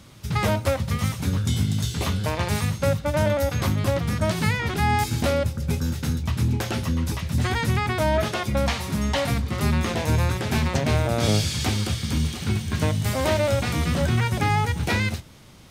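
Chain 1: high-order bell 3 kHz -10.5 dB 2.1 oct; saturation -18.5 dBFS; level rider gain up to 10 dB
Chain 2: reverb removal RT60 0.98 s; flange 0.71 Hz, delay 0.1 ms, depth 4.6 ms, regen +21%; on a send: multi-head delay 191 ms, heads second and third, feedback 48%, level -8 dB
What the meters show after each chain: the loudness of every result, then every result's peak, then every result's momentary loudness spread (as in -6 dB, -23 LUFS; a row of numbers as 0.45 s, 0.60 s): -17.0 LUFS, -28.0 LUFS; -8.5 dBFS, -11.0 dBFS; 3 LU, 4 LU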